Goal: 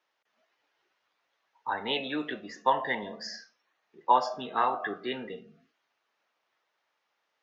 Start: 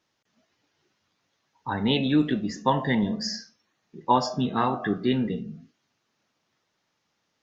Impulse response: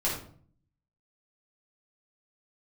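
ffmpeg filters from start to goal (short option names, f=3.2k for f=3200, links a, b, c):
-filter_complex "[0:a]acrossover=split=440 3400:gain=0.0708 1 0.251[a][b][c];[a][b][c]amix=inputs=3:normalize=0"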